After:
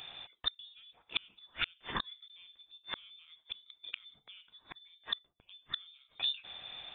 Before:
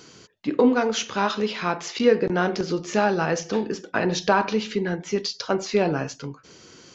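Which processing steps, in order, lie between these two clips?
low shelf with overshoot 240 Hz −11.5 dB, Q 3
gate with flip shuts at −19 dBFS, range −37 dB
voice inversion scrambler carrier 3,900 Hz

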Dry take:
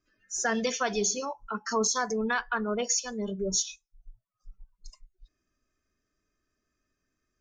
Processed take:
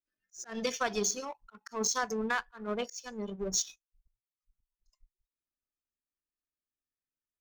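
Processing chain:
volume swells 174 ms
power curve on the samples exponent 1.4

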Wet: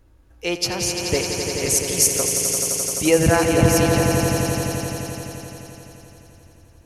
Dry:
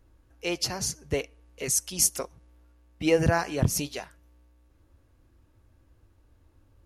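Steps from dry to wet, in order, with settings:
notch filter 1,100 Hz, Q 29
echo that builds up and dies away 86 ms, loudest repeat 5, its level −8 dB
level +5.5 dB

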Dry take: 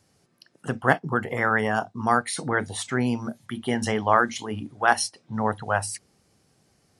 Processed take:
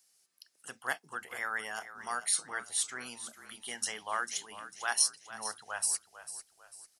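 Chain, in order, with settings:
first difference
echo with shifted repeats 447 ms, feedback 40%, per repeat −33 Hz, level −13 dB
level +1.5 dB

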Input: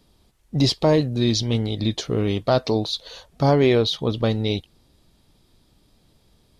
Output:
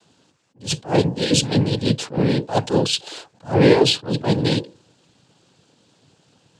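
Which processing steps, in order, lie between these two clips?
mains-hum notches 60/120/180/240/300/360/420/480 Hz
cochlear-implant simulation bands 8
level that may rise only so fast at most 230 dB per second
level +5.5 dB

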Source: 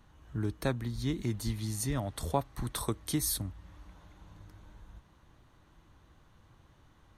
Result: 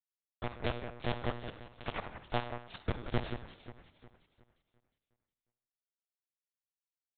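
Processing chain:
low shelf with overshoot 110 Hz −13.5 dB, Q 1.5
in parallel at −0.5 dB: downward compressor 12 to 1, threshold −46 dBFS, peak gain reduction 24 dB
on the sum: bit reduction 4 bits
delay that swaps between a low-pass and a high-pass 179 ms, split 2,400 Hz, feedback 62%, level −9 dB
on a send at −8.5 dB: convolution reverb RT60 0.60 s, pre-delay 37 ms
on the sum: one-pitch LPC vocoder at 8 kHz 120 Hz
level −4 dB

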